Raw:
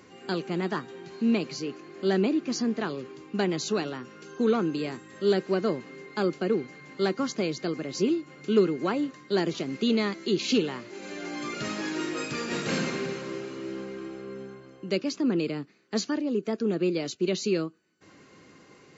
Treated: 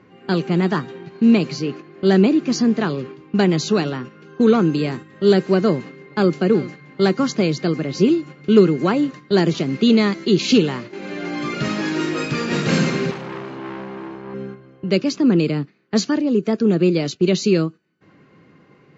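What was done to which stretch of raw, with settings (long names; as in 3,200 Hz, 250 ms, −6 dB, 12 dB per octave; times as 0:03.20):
0:05.73–0:06.36: delay throw 380 ms, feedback 10%, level −17 dB
0:13.11–0:14.34: saturating transformer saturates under 1,800 Hz
whole clip: low-pass that shuts in the quiet parts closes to 2,500 Hz, open at −21 dBFS; noise gate −42 dBFS, range −7 dB; parametric band 150 Hz +7.5 dB 0.99 octaves; level +8 dB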